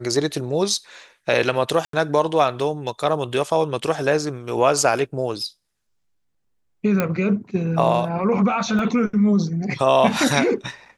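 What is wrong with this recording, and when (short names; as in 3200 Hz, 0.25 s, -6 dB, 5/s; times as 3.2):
1.85–1.93 gap 83 ms
7 pop -7 dBFS
8.79 gap 2.3 ms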